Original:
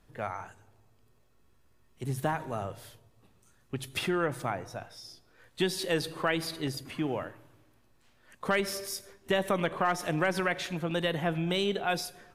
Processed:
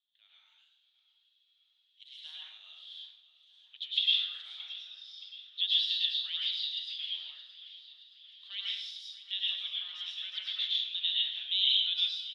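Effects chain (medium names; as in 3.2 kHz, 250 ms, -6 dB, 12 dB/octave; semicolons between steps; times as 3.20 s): level rider gain up to 15.5 dB; Butterworth band-pass 3.5 kHz, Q 4.9; feedback delay 623 ms, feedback 55%, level -16.5 dB; plate-style reverb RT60 0.63 s, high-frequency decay 0.95×, pre-delay 90 ms, DRR -4.5 dB; trim -4.5 dB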